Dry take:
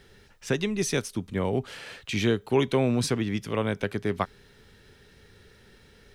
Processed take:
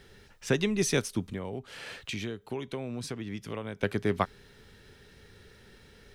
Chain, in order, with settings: 1.32–3.83 s: compression 5:1, threshold -34 dBFS, peak gain reduction 15 dB

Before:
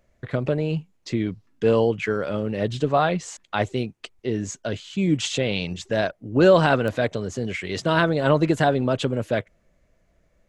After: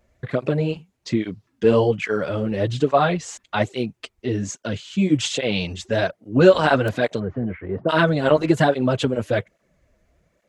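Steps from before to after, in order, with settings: 7.19–7.88 s: low-pass 2.1 kHz -> 1.1 kHz 24 dB/octave; cancelling through-zero flanger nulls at 1.2 Hz, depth 7.7 ms; trim +5 dB

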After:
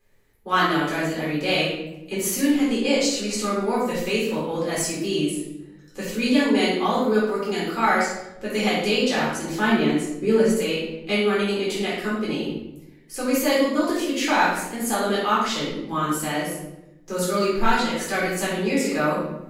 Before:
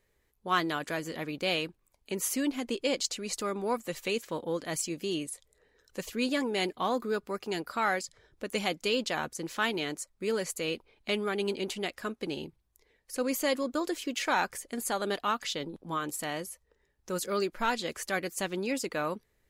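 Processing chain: 9.55–10.53 s: tilt shelf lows +4.5 dB, about 890 Hz; simulated room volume 300 m³, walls mixed, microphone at 3.9 m; trim -2 dB

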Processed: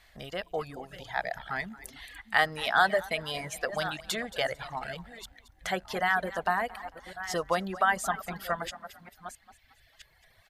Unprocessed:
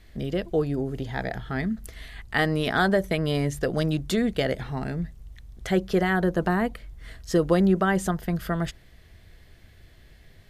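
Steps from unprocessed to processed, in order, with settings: chunks repeated in reverse 668 ms, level -12 dB; resonant low shelf 520 Hz -13.5 dB, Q 1.5; on a send: frequency-shifting echo 224 ms, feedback 38%, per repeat +34 Hz, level -12 dB; on the sum: reverb removal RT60 1.3 s

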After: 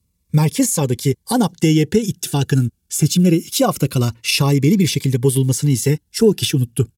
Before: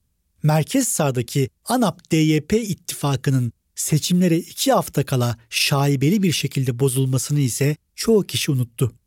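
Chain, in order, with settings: tempo 1.3×; comb of notches 630 Hz; Shepard-style phaser falling 0.24 Hz; trim +4.5 dB

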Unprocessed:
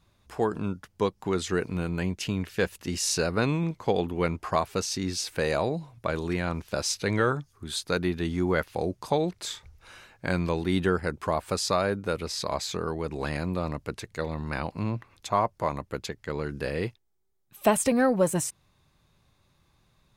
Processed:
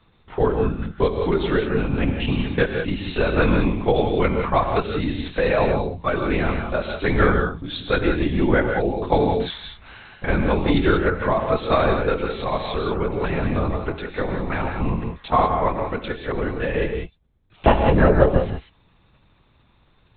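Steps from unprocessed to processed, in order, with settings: LPC vocoder at 8 kHz whisper; gated-style reverb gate 210 ms rising, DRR 4 dB; trim +6.5 dB

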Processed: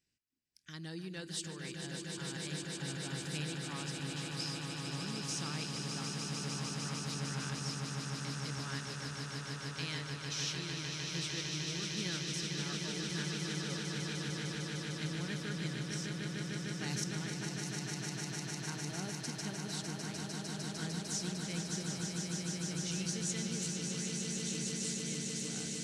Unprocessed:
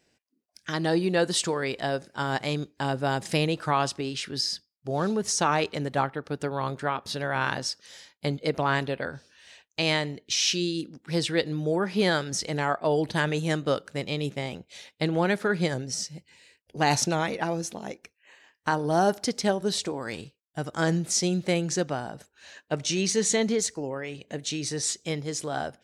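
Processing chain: amplifier tone stack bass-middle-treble 6-0-2; echo with a slow build-up 151 ms, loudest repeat 8, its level -6 dB; trim +1.5 dB

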